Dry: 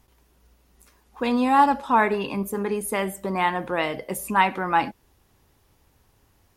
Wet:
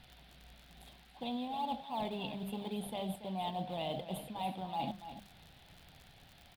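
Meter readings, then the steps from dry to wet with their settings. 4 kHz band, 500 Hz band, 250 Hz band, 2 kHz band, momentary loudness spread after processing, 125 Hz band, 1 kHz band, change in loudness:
-8.0 dB, -15.0 dB, -14.0 dB, -25.0 dB, 20 LU, -8.5 dB, -17.5 dB, -16.5 dB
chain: in parallel at -7.5 dB: decimation with a swept rate 23×, swing 100% 3.5 Hz; on the sum: FFT filter 110 Hz 0 dB, 160 Hz +9 dB, 300 Hz -3 dB, 440 Hz -6 dB, 730 Hz +10 dB, 1.6 kHz -21 dB, 3.5 kHz +14 dB, 5.8 kHz -17 dB, 8.8 kHz -6 dB; crackle 71 per s -42 dBFS; reverse; compression 12:1, threshold -33 dBFS, peak gain reduction 26 dB; reverse; hum notches 50/100/150/200 Hz; delay 284 ms -11.5 dB; band noise 1.3–4.3 kHz -63 dBFS; trim -2.5 dB

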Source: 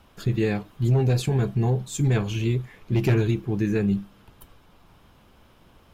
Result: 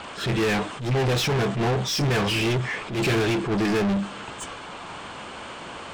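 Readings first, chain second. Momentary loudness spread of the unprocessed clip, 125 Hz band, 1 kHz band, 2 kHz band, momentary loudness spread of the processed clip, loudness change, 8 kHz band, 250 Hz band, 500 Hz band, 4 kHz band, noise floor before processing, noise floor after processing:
5 LU, -4.0 dB, +9.5 dB, +9.5 dB, 15 LU, +0.5 dB, +5.0 dB, +0.5 dB, +3.0 dB, +11.5 dB, -56 dBFS, -38 dBFS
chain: knee-point frequency compression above 3 kHz 1.5:1; overdrive pedal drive 34 dB, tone 5.4 kHz, clips at -13 dBFS; attacks held to a fixed rise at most 110 dB/s; trim -3.5 dB

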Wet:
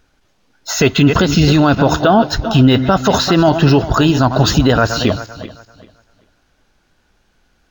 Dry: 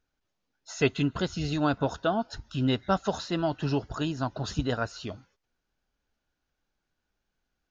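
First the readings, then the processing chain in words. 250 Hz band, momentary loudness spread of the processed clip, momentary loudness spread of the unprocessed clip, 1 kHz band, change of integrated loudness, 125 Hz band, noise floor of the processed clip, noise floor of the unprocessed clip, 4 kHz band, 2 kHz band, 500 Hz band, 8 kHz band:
+17.0 dB, 6 LU, 8 LU, +16.5 dB, +16.5 dB, +18.0 dB, -60 dBFS, -83 dBFS, +18.0 dB, +16.5 dB, +16.0 dB, no reading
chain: backward echo that repeats 195 ms, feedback 47%, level -14 dB; loudness maximiser +23 dB; decimation joined by straight lines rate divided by 2×; trim -1 dB

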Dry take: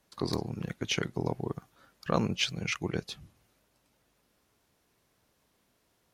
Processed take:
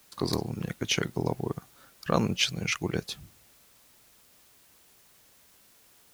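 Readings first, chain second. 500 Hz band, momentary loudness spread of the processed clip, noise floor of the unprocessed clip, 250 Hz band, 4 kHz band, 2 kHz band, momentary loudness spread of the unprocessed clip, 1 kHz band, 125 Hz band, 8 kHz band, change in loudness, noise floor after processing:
+2.5 dB, 13 LU, -73 dBFS, +2.5 dB, +3.5 dB, +3.0 dB, 12 LU, +2.5 dB, +2.5 dB, +5.5 dB, +2.5 dB, -60 dBFS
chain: treble shelf 9.2 kHz +10.5 dB; added noise white -63 dBFS; trim +2.5 dB

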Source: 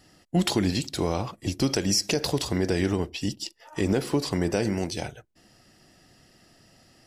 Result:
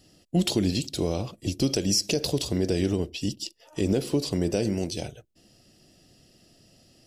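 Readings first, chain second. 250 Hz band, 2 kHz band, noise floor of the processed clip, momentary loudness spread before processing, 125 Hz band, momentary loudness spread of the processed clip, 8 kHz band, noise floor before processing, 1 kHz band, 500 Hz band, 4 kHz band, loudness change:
0.0 dB, -5.5 dB, -63 dBFS, 9 LU, 0.0 dB, 9 LU, 0.0 dB, -62 dBFS, -7.0 dB, 0.0 dB, 0.0 dB, 0.0 dB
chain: high-order bell 1.3 kHz -9.5 dB

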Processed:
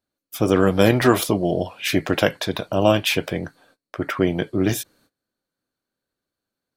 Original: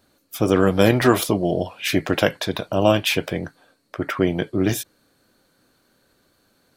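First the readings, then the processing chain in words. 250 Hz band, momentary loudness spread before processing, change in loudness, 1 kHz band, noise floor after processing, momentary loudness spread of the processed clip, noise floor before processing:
0.0 dB, 14 LU, 0.0 dB, 0.0 dB, under -85 dBFS, 14 LU, -64 dBFS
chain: gate -57 dBFS, range -22 dB

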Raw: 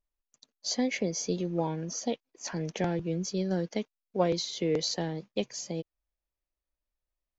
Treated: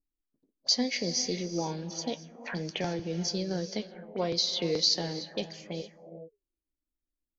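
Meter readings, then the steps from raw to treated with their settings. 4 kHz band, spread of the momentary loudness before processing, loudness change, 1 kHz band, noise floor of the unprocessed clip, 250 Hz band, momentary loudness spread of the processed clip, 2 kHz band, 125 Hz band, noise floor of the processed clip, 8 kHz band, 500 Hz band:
+7.5 dB, 9 LU, +1.0 dB, -2.0 dB, under -85 dBFS, -2.5 dB, 14 LU, +0.5 dB, -2.5 dB, under -85 dBFS, no reading, -2.5 dB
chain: in parallel at +1 dB: peak limiter -21 dBFS, peak gain reduction 8 dB; on the sum: flange 1.4 Hz, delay 6.9 ms, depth 4.9 ms, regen +68%; gated-style reverb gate 480 ms rising, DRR 11 dB; touch-sensitive low-pass 300–5000 Hz up, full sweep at -29 dBFS; trim -4 dB

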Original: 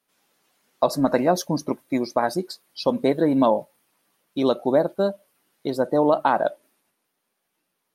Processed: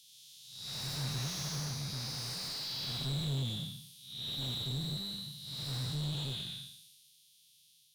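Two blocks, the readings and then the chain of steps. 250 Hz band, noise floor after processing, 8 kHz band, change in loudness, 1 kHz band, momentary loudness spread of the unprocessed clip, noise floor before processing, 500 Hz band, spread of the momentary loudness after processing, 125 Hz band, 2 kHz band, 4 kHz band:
-20.0 dB, -65 dBFS, no reading, -14.5 dB, -27.0 dB, 8 LU, -77 dBFS, -31.5 dB, 10 LU, -1.5 dB, -15.0 dB, +2.5 dB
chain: spectral blur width 343 ms; Chebyshev band-stop 140–3400 Hz, order 4; overdrive pedal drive 30 dB, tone 2.3 kHz, clips at -30 dBFS; trim +3.5 dB

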